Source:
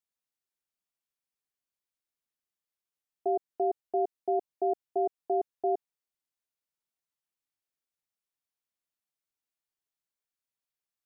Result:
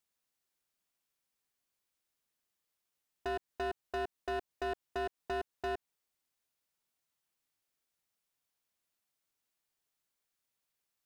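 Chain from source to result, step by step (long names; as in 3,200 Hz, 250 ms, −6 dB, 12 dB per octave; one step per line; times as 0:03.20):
downward compressor 6 to 1, threshold −30 dBFS, peak gain reduction 6.5 dB
hard clipping −39 dBFS, distortion −6 dB
level +6 dB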